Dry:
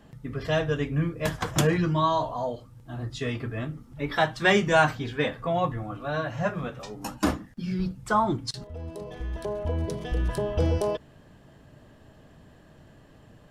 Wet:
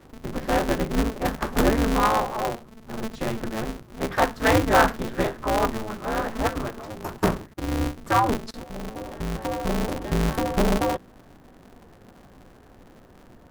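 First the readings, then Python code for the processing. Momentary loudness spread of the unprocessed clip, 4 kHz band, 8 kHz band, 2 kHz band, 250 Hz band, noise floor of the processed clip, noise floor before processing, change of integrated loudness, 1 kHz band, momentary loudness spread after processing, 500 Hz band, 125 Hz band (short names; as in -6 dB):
14 LU, +0.5 dB, +3.5 dB, +1.0 dB, +3.5 dB, -51 dBFS, -54 dBFS, +2.5 dB, +4.0 dB, 14 LU, +2.0 dB, -1.5 dB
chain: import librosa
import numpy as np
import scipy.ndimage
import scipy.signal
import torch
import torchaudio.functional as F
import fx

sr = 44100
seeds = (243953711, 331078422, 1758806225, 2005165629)

y = fx.band_shelf(x, sr, hz=4400.0, db=-11.5, octaves=2.5)
y = y * np.sign(np.sin(2.0 * np.pi * 110.0 * np.arange(len(y)) / sr))
y = y * librosa.db_to_amplitude(3.0)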